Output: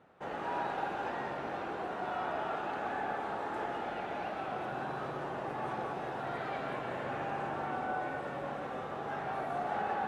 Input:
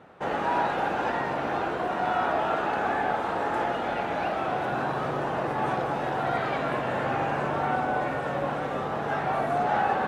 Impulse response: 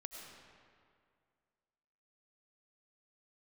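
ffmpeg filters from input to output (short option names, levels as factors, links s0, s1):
-filter_complex "[1:a]atrim=start_sample=2205,atrim=end_sample=6174,asetrate=26901,aresample=44100[s0];[0:a][s0]afir=irnorm=-1:irlink=0,volume=0.422"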